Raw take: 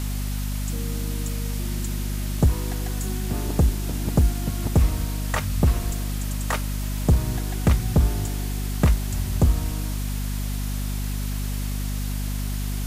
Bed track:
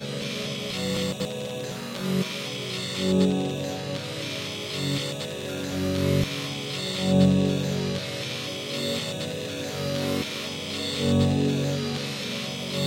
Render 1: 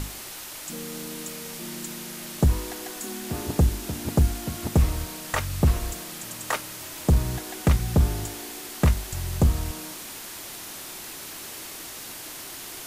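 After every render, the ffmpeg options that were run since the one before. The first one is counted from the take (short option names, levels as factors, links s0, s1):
-af "bandreject=f=50:t=h:w=6,bandreject=f=100:t=h:w=6,bandreject=f=150:t=h:w=6,bandreject=f=200:t=h:w=6,bandreject=f=250:t=h:w=6"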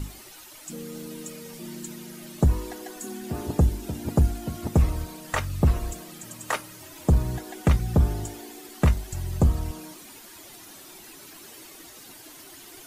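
-af "afftdn=nr=11:nf=-39"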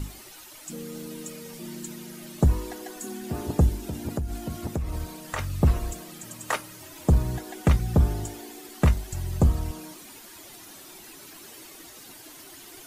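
-filter_complex "[0:a]asettb=1/sr,asplit=3[s0][s1][s2];[s0]atrim=end=3.794[s3];[s1]atrim=start=3.79:end=5.39,asetpts=PTS-STARTPTS,afade=t=in:d=0.004:c=qsin,afade=t=out:st=1.596:d=0.004:c=qsin,acompressor=threshold=0.0562:ratio=10:attack=3.2:release=140:knee=1:detection=peak[s4];[s2]atrim=start=5.386[s5];[s3][s4]acrossfade=d=0.004:c1=hsin:c2=qsin[s6];[s6][s5]acrossfade=d=0.004:c1=qsin:c2=hsin"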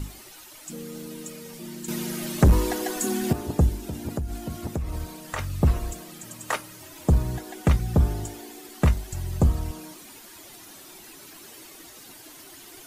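-filter_complex "[0:a]asettb=1/sr,asplit=3[s0][s1][s2];[s0]atrim=end=1.884[s3];[s1]atrim=start=1.88:end=3.33,asetpts=PTS-STARTPTS,afade=t=in:d=0.004:c=qsin,afade=t=out:st=1.446:d=0.004:c=qsin,aeval=exprs='0.299*sin(PI/2*2*val(0)/0.299)':c=same[s4];[s2]atrim=start=3.326[s5];[s3][s4]acrossfade=d=0.004:c1=hsin:c2=qsin[s6];[s6][s5]acrossfade=d=0.004:c1=qsin:c2=hsin"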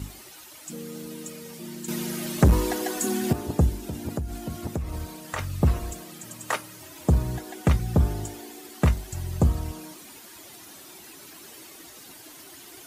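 -af "highpass=50"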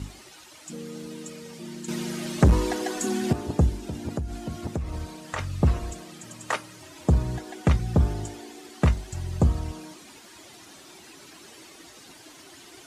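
-af "lowpass=7700"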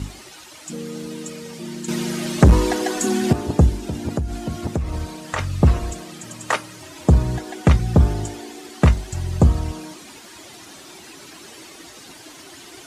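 -af "volume=2.11,alimiter=limit=0.891:level=0:latency=1"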